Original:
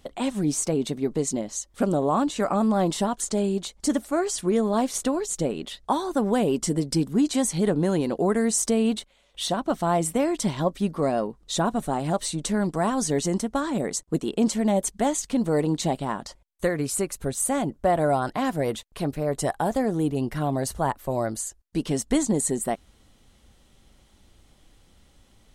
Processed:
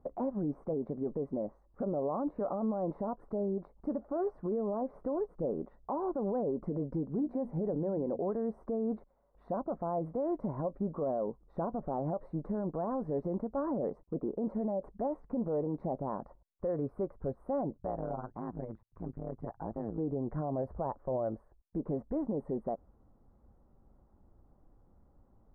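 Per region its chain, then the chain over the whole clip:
7.05–8.21 s: peaking EQ 1.2 kHz -5 dB 0.62 oct + hum notches 60/120/180/240 Hz
17.78–19.98 s: peaking EQ 550 Hz -9.5 dB 1.9 oct + AM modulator 110 Hz, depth 95%
whole clip: inverse Chebyshev low-pass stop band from 2.9 kHz, stop band 50 dB; dynamic bell 540 Hz, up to +8 dB, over -40 dBFS, Q 2.2; peak limiter -20.5 dBFS; trim -5.5 dB

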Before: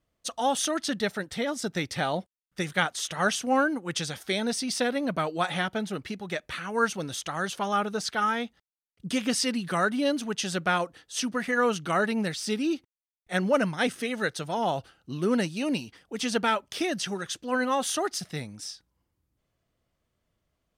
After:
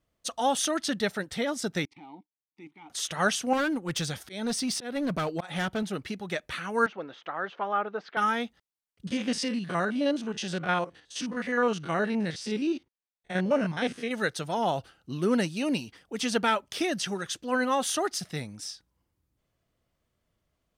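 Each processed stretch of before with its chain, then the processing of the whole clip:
1.85–2.90 s: level held to a coarse grid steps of 18 dB + waveshaping leveller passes 1 + vowel filter u
3.53–5.83 s: bass shelf 130 Hz +8.5 dB + slow attack 221 ms + hard clipper -24.5 dBFS
6.86–8.17 s: band-pass 370–2100 Hz + distance through air 150 m
9.07–14.11 s: spectrogram pixelated in time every 50 ms + distance through air 64 m + band-stop 1.3 kHz, Q 17
whole clip: none

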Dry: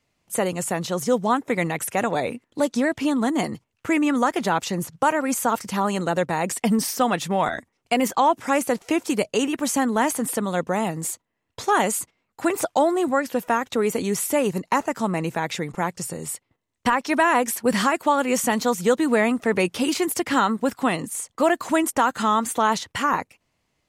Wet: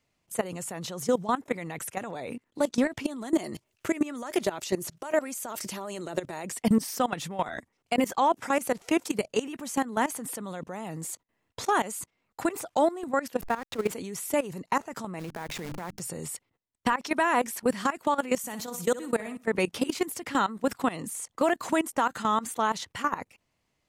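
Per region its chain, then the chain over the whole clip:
3.04–6.45 s: treble shelf 2.1 kHz +10 dB + compression 20:1, threshold -20 dBFS + small resonant body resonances 370/610 Hz, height 11 dB, ringing for 50 ms
13.41–13.93 s: send-on-delta sampling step -30.5 dBFS + treble shelf 9.6 kHz -9 dB + band-stop 5.8 kHz, Q 28
15.19–16.00 s: send-on-delta sampling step -31.5 dBFS + hum notches 50/100/150/200/250/300 Hz + compression 20:1, threshold -27 dBFS
18.38–19.47 s: treble shelf 8.2 kHz +11 dB + level held to a coarse grid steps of 18 dB + flutter echo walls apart 10.6 m, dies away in 0.31 s
whole clip: level held to a coarse grid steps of 20 dB; peak limiter -18.5 dBFS; trim +3.5 dB

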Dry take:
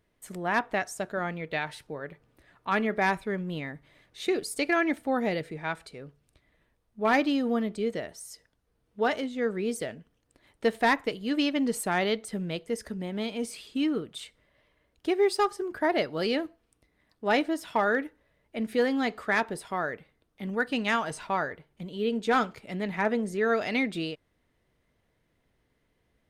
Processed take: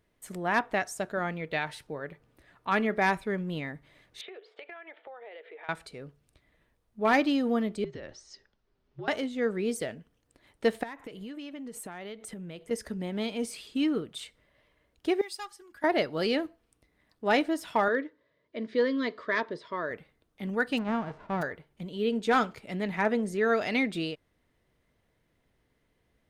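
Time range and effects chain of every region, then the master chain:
4.21–5.69 s: Chebyshev band-pass 410–3400 Hz, order 4 + compression 10:1, threshold -42 dBFS
7.84–9.08 s: steep low-pass 6 kHz + compression 12:1, threshold -36 dBFS + frequency shift -66 Hz
10.83–12.71 s: peaking EQ 4.6 kHz -6.5 dB 0.54 oct + compression 16:1, threshold -37 dBFS
15.21–15.84 s: amplifier tone stack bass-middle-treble 5-5-5 + comb 3.6 ms, depth 40%
17.88–19.91 s: Butterworth band-stop 800 Hz, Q 2.5 + cabinet simulation 170–4800 Hz, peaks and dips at 200 Hz -7 dB, 910 Hz +5 dB, 1.4 kHz -7 dB, 2.6 kHz -9 dB
20.77–21.41 s: formants flattened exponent 0.3 + low-pass 1 kHz
whole clip: none

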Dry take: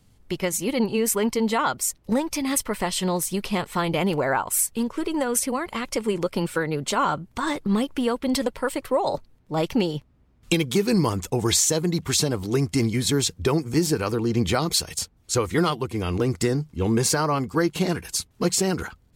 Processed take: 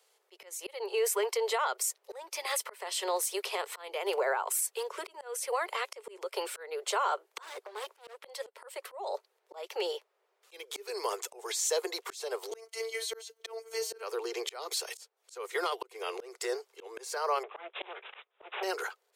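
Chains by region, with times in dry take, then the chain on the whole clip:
7.42–8.17 s: bass shelf 180 Hz +5.5 dB + compressor with a negative ratio -22 dBFS, ratio -0.5 + hard clipper -28 dBFS
12.51–14.03 s: rippled EQ curve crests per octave 1.9, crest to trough 6 dB + robot voice 225 Hz
17.43–18.63 s: comb filter that takes the minimum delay 0.85 ms + careless resampling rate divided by 6×, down none, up filtered
whole clip: steep high-pass 390 Hz 96 dB/octave; peak limiter -19.5 dBFS; slow attack 335 ms; trim -1.5 dB

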